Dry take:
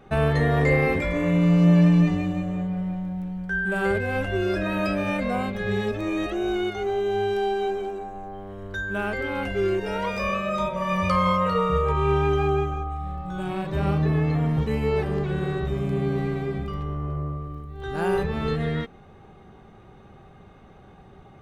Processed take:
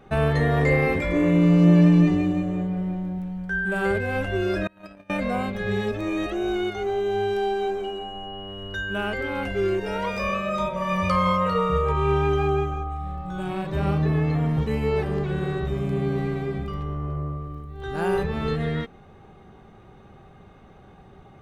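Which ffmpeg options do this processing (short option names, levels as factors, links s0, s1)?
-filter_complex "[0:a]asettb=1/sr,asplit=3[s0][s1][s2];[s0]atrim=end=1.094[s3];[s1]atrim=start=1.09:end=3.19,asetpts=PTS-STARTPTS,afade=t=in:d=0.004:c=qsin,afade=t=out:st=2.096:d=0.004:c=qsin,equalizer=f=350:t=o:w=0.46:g=12[s4];[s2]atrim=start=3.186[s5];[s3][s4]acrossfade=d=0.004:c1=hsin:c2=qsin[s6];[s6][s5]acrossfade=d=0.004:c1=qsin:c2=hsin,asettb=1/sr,asplit=3[s7][s8][s9];[s7]atrim=end=4.674[s10];[s8]atrim=start=4.67:end=5.1,asetpts=PTS-STARTPTS,afade=t=in:d=0.004:c=qsin,afade=t=out:st=0.426:d=0.004:c=qsin,agate=range=0.0282:threshold=0.0794:ratio=16:release=100:detection=peak[s11];[s9]atrim=start=5.096[s12];[s10][s11]acrossfade=d=0.004:c1=hsin:c2=qsin[s13];[s13][s12]acrossfade=d=0.004:c1=qsin:c2=hsin,asettb=1/sr,asplit=3[s14][s15][s16];[s14]atrim=end=7.844[s17];[s15]atrim=start=7.84:end=9.14,asetpts=PTS-STARTPTS,afade=t=in:d=0.004:c=qsin,afade=t=out:st=1.296:d=0.004:c=qsin,aeval=exprs='val(0)+0.0112*sin(2*PI*2900*n/s)':c=same[s18];[s16]atrim=start=9.136[s19];[s17][s18]acrossfade=d=0.004:c1=hsin:c2=qsin[s20];[s20][s19]acrossfade=d=0.004:c1=qsin:c2=hsin"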